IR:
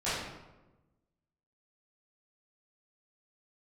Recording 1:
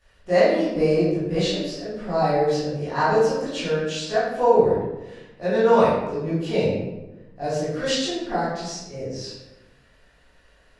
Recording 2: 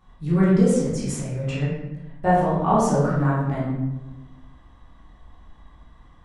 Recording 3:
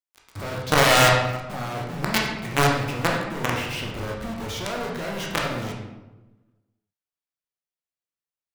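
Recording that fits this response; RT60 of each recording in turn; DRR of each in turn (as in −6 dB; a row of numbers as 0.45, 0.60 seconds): 1; 1.1, 1.1, 1.1 seconds; −14.5, −9.0, −2.0 decibels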